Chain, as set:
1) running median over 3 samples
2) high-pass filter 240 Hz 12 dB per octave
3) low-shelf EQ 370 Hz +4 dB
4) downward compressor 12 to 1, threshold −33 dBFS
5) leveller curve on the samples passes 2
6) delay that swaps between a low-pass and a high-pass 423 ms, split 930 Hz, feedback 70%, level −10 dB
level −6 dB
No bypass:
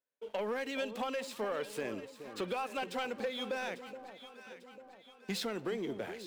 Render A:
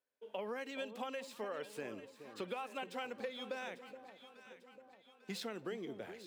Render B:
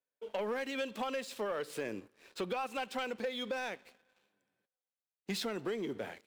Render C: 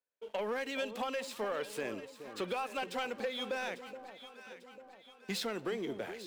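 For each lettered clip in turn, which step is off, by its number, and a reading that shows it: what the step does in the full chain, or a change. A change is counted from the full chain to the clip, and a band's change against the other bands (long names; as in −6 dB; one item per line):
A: 5, change in crest factor +5.5 dB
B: 6, echo-to-direct ratio −11.0 dB to none audible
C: 3, 125 Hz band −2.5 dB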